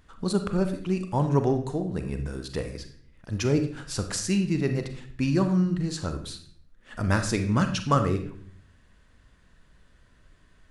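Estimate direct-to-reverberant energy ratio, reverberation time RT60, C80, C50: 6.5 dB, 0.55 s, 13.0 dB, 9.0 dB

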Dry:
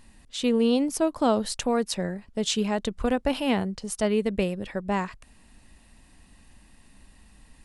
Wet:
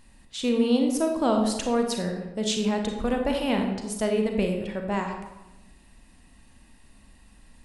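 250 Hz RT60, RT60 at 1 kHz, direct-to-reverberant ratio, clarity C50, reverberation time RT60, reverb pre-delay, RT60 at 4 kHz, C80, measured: 1.1 s, 1.0 s, 3.0 dB, 4.5 dB, 1.0 s, 31 ms, 0.65 s, 7.0 dB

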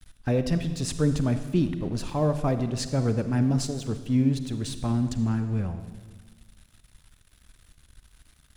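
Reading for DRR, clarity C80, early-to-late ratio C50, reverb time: 9.5 dB, 11.5 dB, 10.0 dB, 1.5 s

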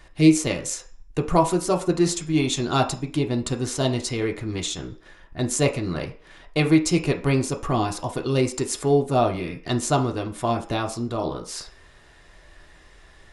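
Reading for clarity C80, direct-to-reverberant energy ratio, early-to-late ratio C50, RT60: 17.0 dB, 1.0 dB, 13.0 dB, 0.45 s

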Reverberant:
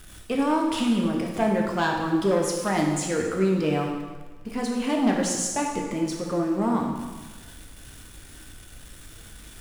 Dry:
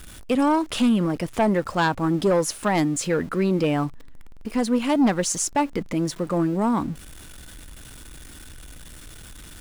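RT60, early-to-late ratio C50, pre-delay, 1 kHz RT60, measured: 1.3 s, 3.0 dB, 6 ms, 1.3 s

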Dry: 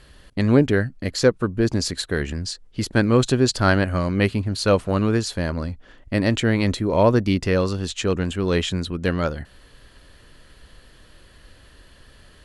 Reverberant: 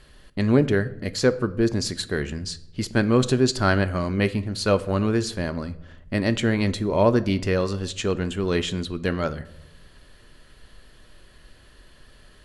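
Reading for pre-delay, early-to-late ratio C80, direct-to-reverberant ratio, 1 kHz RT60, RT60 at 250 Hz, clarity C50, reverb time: 3 ms, 20.5 dB, 11.0 dB, 0.70 s, 1.1 s, 17.5 dB, 0.85 s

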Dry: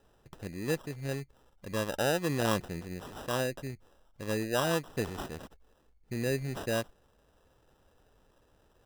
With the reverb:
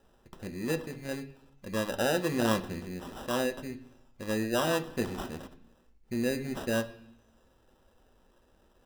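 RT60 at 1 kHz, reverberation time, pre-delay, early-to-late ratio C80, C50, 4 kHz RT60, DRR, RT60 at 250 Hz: 0.70 s, 0.70 s, 3 ms, 17.5 dB, 15.5 dB, 1.2 s, 7.0 dB, 0.95 s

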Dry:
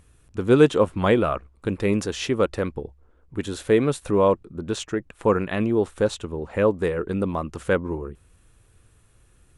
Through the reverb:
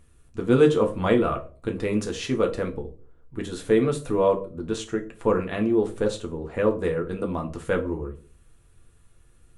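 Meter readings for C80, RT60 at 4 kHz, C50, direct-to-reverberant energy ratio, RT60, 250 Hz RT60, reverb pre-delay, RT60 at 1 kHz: 19.0 dB, 0.25 s, 14.0 dB, 3.0 dB, 0.40 s, 0.50 s, 4 ms, 0.30 s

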